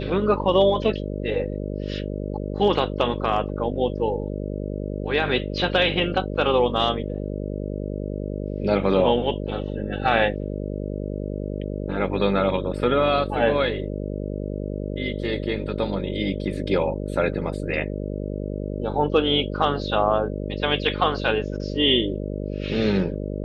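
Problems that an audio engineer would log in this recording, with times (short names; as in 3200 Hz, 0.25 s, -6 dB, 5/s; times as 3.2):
buzz 50 Hz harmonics 12 -29 dBFS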